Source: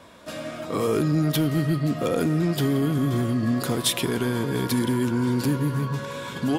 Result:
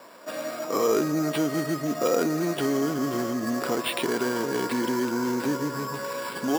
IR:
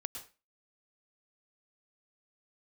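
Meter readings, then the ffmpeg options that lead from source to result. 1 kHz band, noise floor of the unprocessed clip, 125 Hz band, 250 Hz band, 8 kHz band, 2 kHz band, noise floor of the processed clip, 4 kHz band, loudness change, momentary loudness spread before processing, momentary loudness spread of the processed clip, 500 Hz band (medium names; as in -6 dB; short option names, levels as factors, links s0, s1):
+2.5 dB, -36 dBFS, -12.5 dB, -3.0 dB, -1.5 dB, +1.0 dB, -36 dBFS, -4.0 dB, -2.5 dB, 8 LU, 8 LU, +1.5 dB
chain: -af "highpass=350,lowpass=2500,acrusher=samples=7:mix=1:aa=0.000001,volume=1.41"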